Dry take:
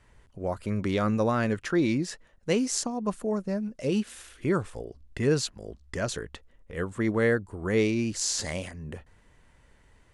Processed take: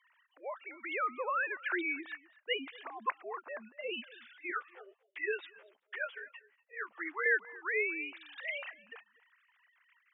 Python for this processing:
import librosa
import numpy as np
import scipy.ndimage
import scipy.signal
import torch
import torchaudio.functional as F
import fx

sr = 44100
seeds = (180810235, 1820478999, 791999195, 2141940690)

y = fx.sine_speech(x, sr)
y = scipy.signal.sosfilt(scipy.signal.butter(2, 1300.0, 'highpass', fs=sr, output='sos'), y)
y = y + 10.0 ** (-21.5 / 20.0) * np.pad(y, (int(240 * sr / 1000.0), 0))[:len(y)]
y = fx.ensemble(y, sr, at=(4.5, 7.26))
y = F.gain(torch.from_numpy(y), 4.5).numpy()